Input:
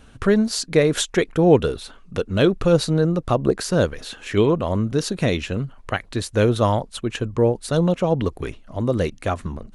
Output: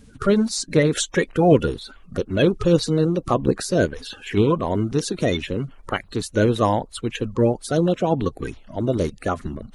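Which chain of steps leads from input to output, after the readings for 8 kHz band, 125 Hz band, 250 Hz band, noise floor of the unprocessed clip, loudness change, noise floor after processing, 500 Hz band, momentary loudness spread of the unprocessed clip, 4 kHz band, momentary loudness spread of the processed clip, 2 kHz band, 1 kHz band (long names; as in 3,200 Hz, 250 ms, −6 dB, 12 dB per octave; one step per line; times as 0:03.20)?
+0.5 dB, −1.0 dB, 0.0 dB, −47 dBFS, −0.5 dB, −48 dBFS, −1.0 dB, 10 LU, −1.5 dB, 10 LU, −0.5 dB, +1.0 dB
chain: spectral magnitudes quantised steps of 30 dB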